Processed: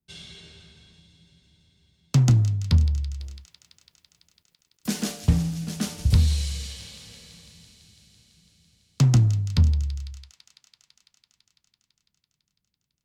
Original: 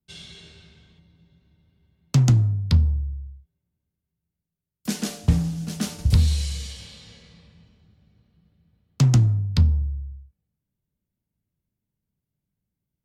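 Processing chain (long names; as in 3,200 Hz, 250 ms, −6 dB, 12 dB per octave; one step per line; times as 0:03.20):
0:03.20–0:05.12: mu-law and A-law mismatch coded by mu
on a send: delay with a high-pass on its return 167 ms, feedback 82%, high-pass 2,200 Hz, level −12.5 dB
on the sum: level −1 dB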